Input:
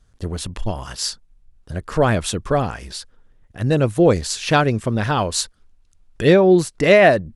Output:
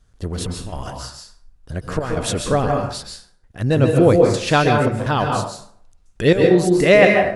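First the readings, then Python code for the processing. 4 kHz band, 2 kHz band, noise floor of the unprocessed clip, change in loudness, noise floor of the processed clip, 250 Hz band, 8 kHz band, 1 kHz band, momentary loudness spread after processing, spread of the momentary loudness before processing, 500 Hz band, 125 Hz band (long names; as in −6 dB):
−1.0 dB, +1.0 dB, −57 dBFS, +1.0 dB, −55 dBFS, +1.0 dB, −3.0 dB, +1.0 dB, 18 LU, 17 LU, +1.0 dB, +1.5 dB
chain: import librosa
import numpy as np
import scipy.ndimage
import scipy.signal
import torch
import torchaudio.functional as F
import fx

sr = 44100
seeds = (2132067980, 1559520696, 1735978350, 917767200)

y = fx.step_gate(x, sr, bpm=83, pattern='xxx.x..xxxx.', floor_db=-12.0, edge_ms=4.5)
y = fx.rev_plate(y, sr, seeds[0], rt60_s=0.61, hf_ratio=0.6, predelay_ms=120, drr_db=1.5)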